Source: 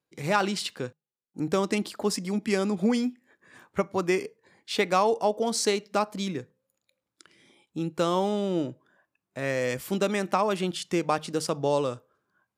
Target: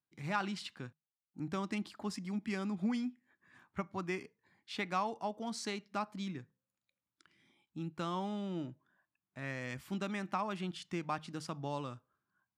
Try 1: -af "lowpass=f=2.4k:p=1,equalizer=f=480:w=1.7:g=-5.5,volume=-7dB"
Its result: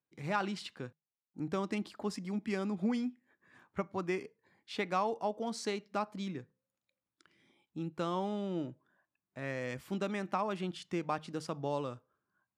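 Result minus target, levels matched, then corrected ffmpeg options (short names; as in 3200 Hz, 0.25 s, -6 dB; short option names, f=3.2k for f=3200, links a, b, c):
500 Hz band +3.5 dB
-af "lowpass=f=2.4k:p=1,equalizer=f=480:w=1.7:g=-14.5,volume=-7dB"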